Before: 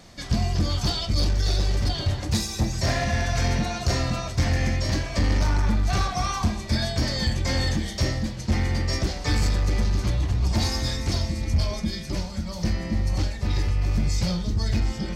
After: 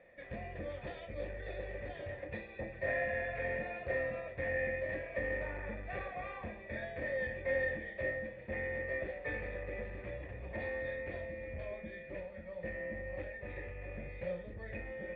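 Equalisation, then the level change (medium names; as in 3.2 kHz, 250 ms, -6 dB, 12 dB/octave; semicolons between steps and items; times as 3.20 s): cascade formant filter e; bass shelf 420 Hz -9.5 dB; +5.0 dB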